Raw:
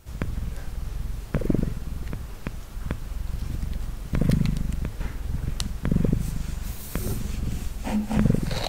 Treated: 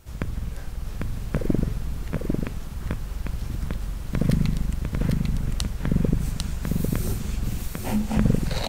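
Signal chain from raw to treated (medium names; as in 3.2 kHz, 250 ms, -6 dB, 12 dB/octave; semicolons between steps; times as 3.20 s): delay 798 ms -3 dB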